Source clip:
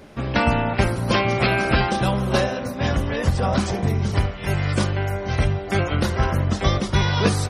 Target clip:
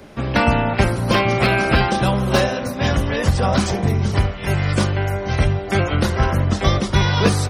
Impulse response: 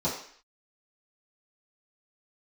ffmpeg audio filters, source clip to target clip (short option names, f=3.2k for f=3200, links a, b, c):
-filter_complex "[0:a]asettb=1/sr,asplit=3[a][b][c];[a]atrim=end=2.274[d];[b]atrim=start=2.27:end=3.74,asetpts=PTS-STARTPTS,afade=t=in:d=0.004:c=qsin,afade=t=out:st=1.466:d=0.004:c=qsin,highshelf=f=2.2k:g=3[e];[c]atrim=start=3.736[f];[d][e]acrossfade=d=0.004:c1=hsin:c2=qsin[g];[g][f]acrossfade=d=0.004:c1=qsin:c2=hsin,acrossover=split=120|1300|2300[h][i][j][k];[k]asoftclip=type=hard:threshold=-24.5dB[l];[h][i][j][l]amix=inputs=4:normalize=0,volume=3dB"